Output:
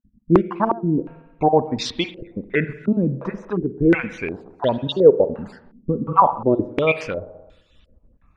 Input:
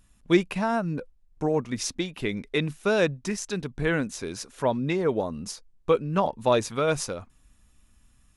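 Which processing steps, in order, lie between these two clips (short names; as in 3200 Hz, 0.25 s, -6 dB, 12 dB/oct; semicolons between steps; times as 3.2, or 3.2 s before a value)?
random spectral dropouts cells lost 39%; spring tank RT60 1.1 s, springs 44/58 ms, chirp 50 ms, DRR 13 dB; stepped low-pass 2.8 Hz 240–3500 Hz; gain +5 dB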